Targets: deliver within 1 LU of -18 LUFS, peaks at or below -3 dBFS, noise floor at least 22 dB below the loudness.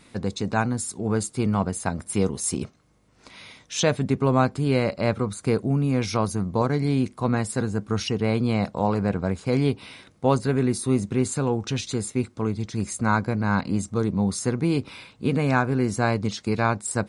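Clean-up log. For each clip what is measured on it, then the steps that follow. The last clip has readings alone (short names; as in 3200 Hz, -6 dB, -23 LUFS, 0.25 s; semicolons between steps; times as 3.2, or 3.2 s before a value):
loudness -25.0 LUFS; peak -7.0 dBFS; loudness target -18.0 LUFS
-> gain +7 dB; limiter -3 dBFS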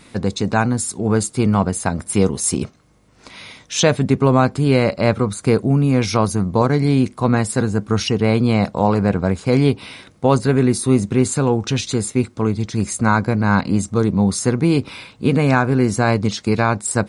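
loudness -18.0 LUFS; peak -3.0 dBFS; noise floor -50 dBFS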